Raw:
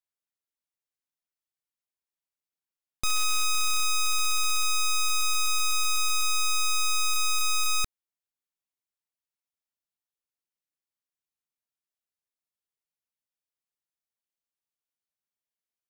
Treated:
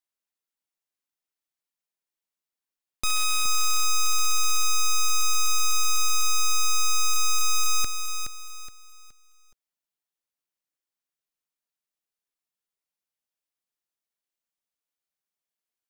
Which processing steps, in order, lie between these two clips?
bell 83 Hz -13 dB 0.9 oct; lo-fi delay 0.42 s, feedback 35%, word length 10-bit, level -7 dB; gain +1.5 dB

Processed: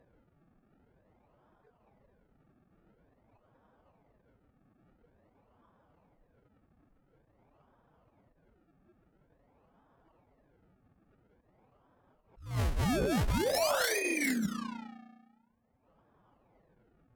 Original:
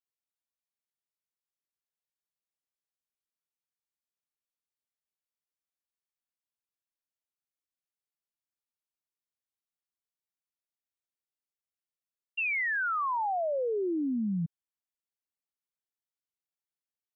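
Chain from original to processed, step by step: de-hum 58.88 Hz, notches 14; spectral noise reduction 28 dB; low shelf 460 Hz +11.5 dB; upward compressor, threshold -28 dBFS; spring tank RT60 1.4 s, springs 34 ms, chirp 20 ms, DRR 12 dB; compressor 5:1, threshold -28 dBFS, peak gain reduction 9 dB; decimation with a swept rate 39×, swing 100% 0.48 Hz; bell 290 Hz -4 dB 0.69 oct; low-pass opened by the level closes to 1600 Hz, open at -28.5 dBFS; formant-preserving pitch shift +4.5 st; one-sided clip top -27.5 dBFS; attack slew limiter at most 130 dB/s; gain +2.5 dB

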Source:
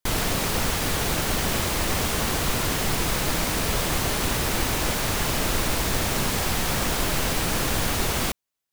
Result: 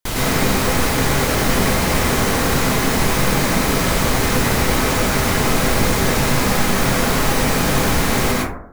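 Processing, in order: plate-style reverb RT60 0.69 s, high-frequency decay 0.3×, pre-delay 95 ms, DRR -6 dB; gain +1 dB

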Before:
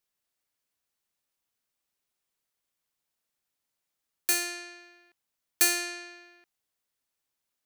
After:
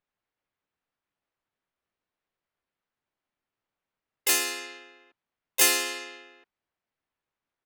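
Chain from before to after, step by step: low-pass opened by the level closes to 1900 Hz, open at -28.5 dBFS; harmoniser -5 st -8 dB, +3 st -1 dB, +7 st -2 dB

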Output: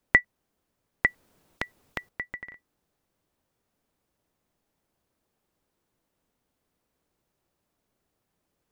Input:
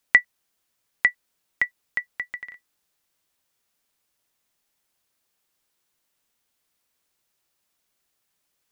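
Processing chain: tilt shelf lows +9.5 dB, about 1100 Hz; 1.06–2.09 spectral compressor 2:1; gain +1 dB

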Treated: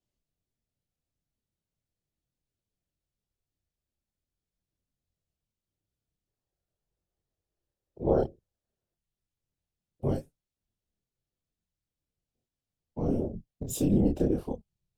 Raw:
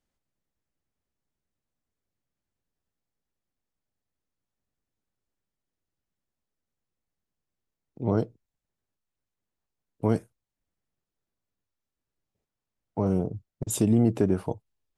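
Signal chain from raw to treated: band shelf 1400 Hz -8.5 dB; whisperiser; chorus voices 2, 0.42 Hz, delay 26 ms, depth 4.2 ms; spectral gain 6.27–8.94, 310–1900 Hz +7 dB; decimation joined by straight lines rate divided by 2×

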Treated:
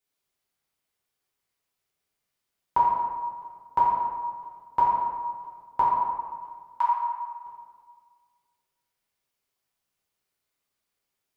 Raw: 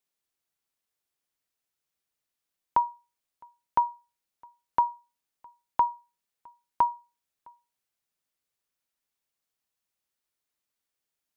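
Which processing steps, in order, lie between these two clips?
5.81–6.86 HPF 940 Hz 24 dB/oct; reverb RT60 1.7 s, pre-delay 3 ms, DRR -8 dB; gain -3 dB

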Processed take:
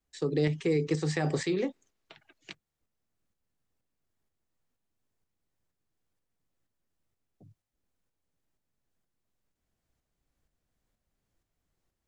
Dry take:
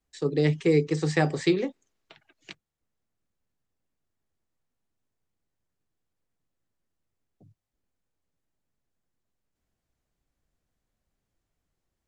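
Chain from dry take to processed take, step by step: limiter -19 dBFS, peak gain reduction 8.5 dB; tremolo saw up 2.1 Hz, depth 45%; gain +2 dB

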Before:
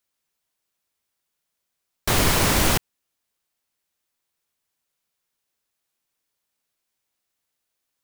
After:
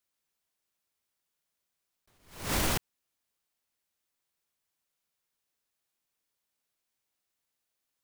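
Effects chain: limiter -13.5 dBFS, peak gain reduction 7 dB; attack slew limiter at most 120 dB/s; gain -4.5 dB

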